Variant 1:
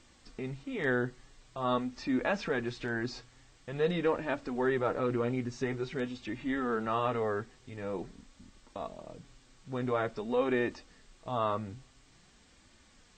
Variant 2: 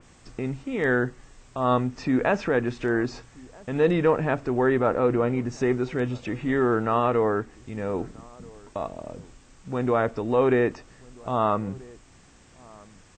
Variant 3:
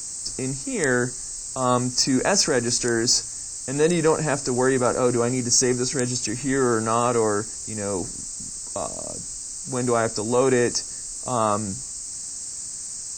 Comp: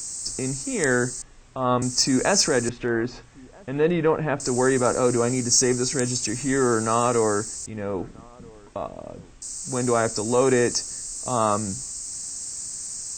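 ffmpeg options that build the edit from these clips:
-filter_complex "[1:a]asplit=3[s0][s1][s2];[2:a]asplit=4[s3][s4][s5][s6];[s3]atrim=end=1.222[s7];[s0]atrim=start=1.218:end=1.822[s8];[s4]atrim=start=1.818:end=2.692[s9];[s1]atrim=start=2.688:end=4.402[s10];[s5]atrim=start=4.398:end=7.662[s11];[s2]atrim=start=7.658:end=9.422[s12];[s6]atrim=start=9.418[s13];[s7][s8]acrossfade=d=0.004:c1=hsin:c2=hsin[s14];[s14][s9]acrossfade=d=0.004:c1=hsin:c2=hsin[s15];[s15][s10]acrossfade=d=0.004:c1=hsin:c2=hsin[s16];[s16][s11]acrossfade=d=0.004:c1=hsin:c2=hsin[s17];[s17][s12]acrossfade=d=0.004:c1=hsin:c2=hsin[s18];[s18][s13]acrossfade=d=0.004:c1=hsin:c2=hsin"

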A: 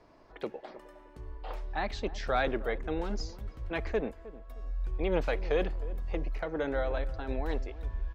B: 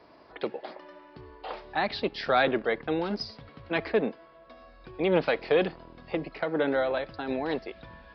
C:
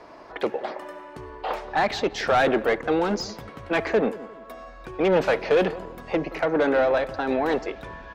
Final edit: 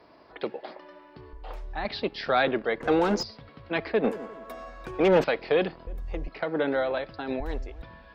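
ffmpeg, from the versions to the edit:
-filter_complex "[0:a]asplit=3[s0][s1][s2];[2:a]asplit=2[s3][s4];[1:a]asplit=6[s5][s6][s7][s8][s9][s10];[s5]atrim=end=1.332[s11];[s0]atrim=start=1.328:end=1.852[s12];[s6]atrim=start=1.848:end=2.812[s13];[s3]atrim=start=2.808:end=3.232[s14];[s7]atrim=start=3.228:end=4.042[s15];[s4]atrim=start=4.038:end=5.242[s16];[s8]atrim=start=5.238:end=5.872[s17];[s1]atrim=start=5.868:end=6.282[s18];[s9]atrim=start=6.278:end=7.402[s19];[s2]atrim=start=7.398:end=7.822[s20];[s10]atrim=start=7.818[s21];[s11][s12]acrossfade=d=0.004:c1=hsin:c2=hsin[s22];[s22][s13]acrossfade=d=0.004:c1=hsin:c2=hsin[s23];[s23][s14]acrossfade=d=0.004:c1=hsin:c2=hsin[s24];[s24][s15]acrossfade=d=0.004:c1=hsin:c2=hsin[s25];[s25][s16]acrossfade=d=0.004:c1=hsin:c2=hsin[s26];[s26][s17]acrossfade=d=0.004:c1=hsin:c2=hsin[s27];[s27][s18]acrossfade=d=0.004:c1=hsin:c2=hsin[s28];[s28][s19]acrossfade=d=0.004:c1=hsin:c2=hsin[s29];[s29][s20]acrossfade=d=0.004:c1=hsin:c2=hsin[s30];[s30][s21]acrossfade=d=0.004:c1=hsin:c2=hsin"

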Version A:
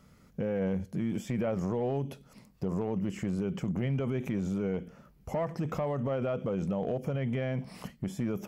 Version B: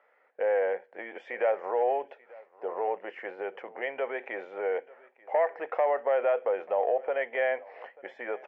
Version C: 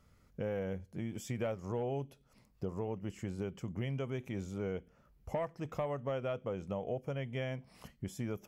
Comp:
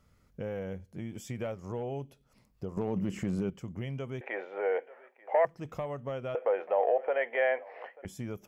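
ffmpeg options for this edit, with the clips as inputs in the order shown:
-filter_complex "[1:a]asplit=2[s0][s1];[2:a]asplit=4[s2][s3][s4][s5];[s2]atrim=end=2.772[s6];[0:a]atrim=start=2.768:end=3.502[s7];[s3]atrim=start=3.498:end=4.212[s8];[s0]atrim=start=4.208:end=5.452[s9];[s4]atrim=start=5.448:end=6.352[s10];[s1]atrim=start=6.348:end=8.052[s11];[s5]atrim=start=8.048[s12];[s6][s7]acrossfade=d=0.004:c1=hsin:c2=hsin[s13];[s13][s8]acrossfade=d=0.004:c1=hsin:c2=hsin[s14];[s14][s9]acrossfade=d=0.004:c1=hsin:c2=hsin[s15];[s15][s10]acrossfade=d=0.004:c1=hsin:c2=hsin[s16];[s16][s11]acrossfade=d=0.004:c1=hsin:c2=hsin[s17];[s17][s12]acrossfade=d=0.004:c1=hsin:c2=hsin"

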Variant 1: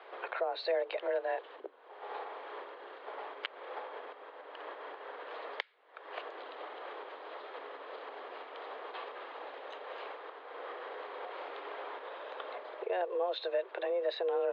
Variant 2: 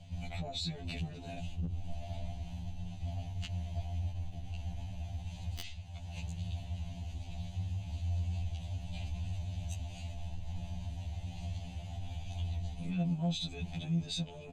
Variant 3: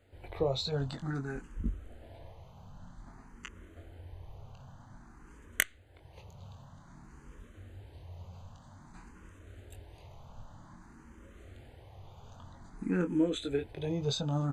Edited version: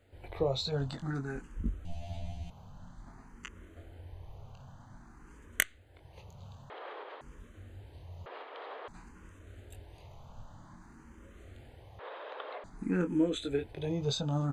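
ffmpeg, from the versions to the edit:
-filter_complex "[0:a]asplit=3[s0][s1][s2];[2:a]asplit=5[s3][s4][s5][s6][s7];[s3]atrim=end=1.852[s8];[1:a]atrim=start=1.848:end=2.502[s9];[s4]atrim=start=2.498:end=6.702[s10];[s0]atrim=start=6.698:end=7.212[s11];[s5]atrim=start=7.208:end=8.262[s12];[s1]atrim=start=8.258:end=8.882[s13];[s6]atrim=start=8.878:end=11.992[s14];[s2]atrim=start=11.988:end=12.642[s15];[s7]atrim=start=12.638[s16];[s8][s9]acrossfade=d=0.004:c1=hsin:c2=hsin[s17];[s17][s10]acrossfade=d=0.004:c1=hsin:c2=hsin[s18];[s18][s11]acrossfade=d=0.004:c1=hsin:c2=hsin[s19];[s19][s12]acrossfade=d=0.004:c1=hsin:c2=hsin[s20];[s20][s13]acrossfade=d=0.004:c1=hsin:c2=hsin[s21];[s21][s14]acrossfade=d=0.004:c1=hsin:c2=hsin[s22];[s22][s15]acrossfade=d=0.004:c1=hsin:c2=hsin[s23];[s23][s16]acrossfade=d=0.004:c1=hsin:c2=hsin"

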